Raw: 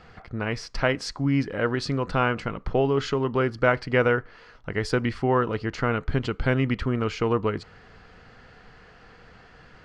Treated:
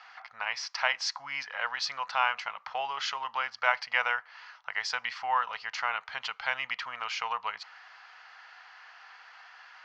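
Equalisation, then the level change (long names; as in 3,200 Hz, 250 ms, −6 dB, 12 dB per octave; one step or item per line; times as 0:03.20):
elliptic band-pass filter 840–6,100 Hz, stop band 40 dB
dynamic equaliser 1,400 Hz, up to −5 dB, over −41 dBFS, Q 1.6
+3.0 dB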